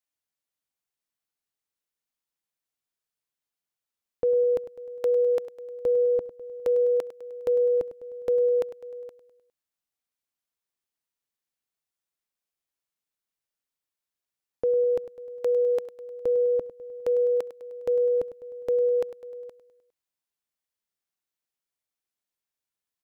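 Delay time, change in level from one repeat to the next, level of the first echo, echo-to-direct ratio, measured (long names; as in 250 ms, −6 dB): 102 ms, −5.0 dB, −14.0 dB, −12.5 dB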